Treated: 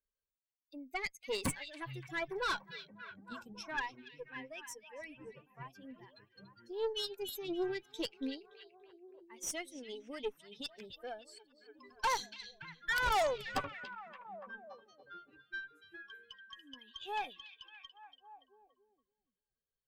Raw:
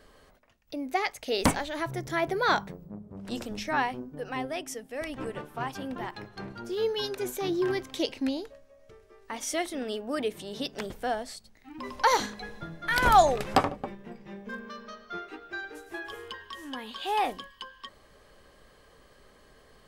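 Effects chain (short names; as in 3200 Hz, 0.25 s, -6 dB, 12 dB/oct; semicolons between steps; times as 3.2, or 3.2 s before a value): per-bin expansion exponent 2; dynamic EQ 260 Hz, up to -5 dB, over -45 dBFS, Q 0.92; tube stage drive 29 dB, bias 0.55; on a send: delay with a stepping band-pass 0.286 s, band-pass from 3300 Hz, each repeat -0.7 oct, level -8 dB; on the sum: gain +1 dB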